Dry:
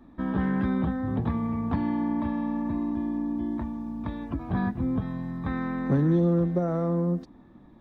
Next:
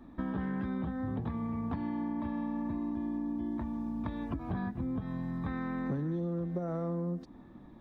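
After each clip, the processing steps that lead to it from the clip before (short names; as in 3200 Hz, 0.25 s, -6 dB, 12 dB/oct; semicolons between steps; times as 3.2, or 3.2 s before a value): compressor, threshold -32 dBFS, peak gain reduction 12.5 dB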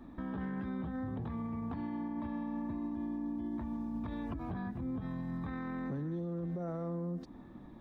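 limiter -32.5 dBFS, peak gain reduction 9 dB; gain +1 dB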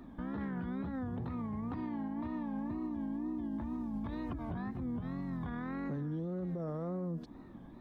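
wow and flutter 130 cents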